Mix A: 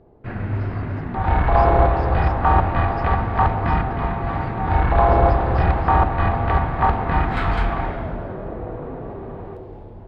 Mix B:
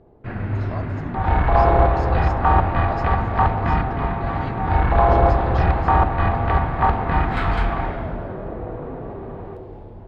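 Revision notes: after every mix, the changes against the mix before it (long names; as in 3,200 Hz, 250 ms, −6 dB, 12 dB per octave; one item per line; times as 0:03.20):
speech: remove pair of resonant band-passes 2,400 Hz, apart 2 octaves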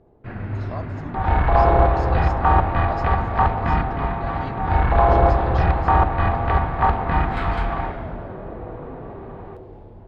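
first sound −3.5 dB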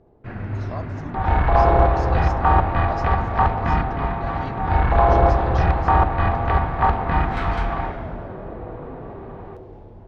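master: add parametric band 5,900 Hz +10 dB 0.21 octaves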